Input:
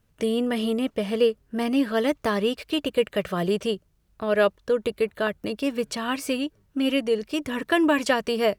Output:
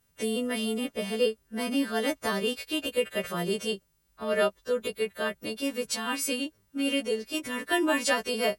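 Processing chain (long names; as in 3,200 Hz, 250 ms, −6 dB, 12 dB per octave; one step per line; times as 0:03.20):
every partial snapped to a pitch grid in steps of 2 semitones
level −5 dB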